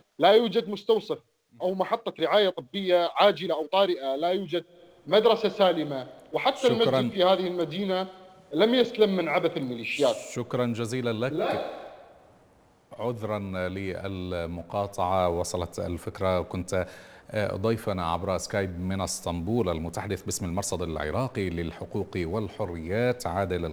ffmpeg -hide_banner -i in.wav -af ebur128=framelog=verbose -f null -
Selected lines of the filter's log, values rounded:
Integrated loudness:
  I:         -27.1 LUFS
  Threshold: -37.4 LUFS
Loudness range:
  LRA:         6.7 LU
  Threshold: -47.6 LUFS
  LRA low:   -31.5 LUFS
  LRA high:  -24.8 LUFS